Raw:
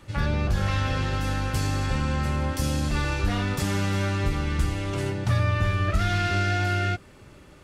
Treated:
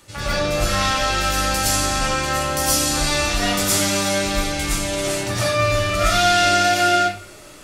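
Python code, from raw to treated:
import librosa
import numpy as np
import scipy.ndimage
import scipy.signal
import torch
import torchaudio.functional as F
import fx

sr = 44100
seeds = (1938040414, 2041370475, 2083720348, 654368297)

y = fx.bass_treble(x, sr, bass_db=-8, treble_db=12)
y = fx.rev_freeverb(y, sr, rt60_s=0.48, hf_ratio=0.7, predelay_ms=75, drr_db=-8.5)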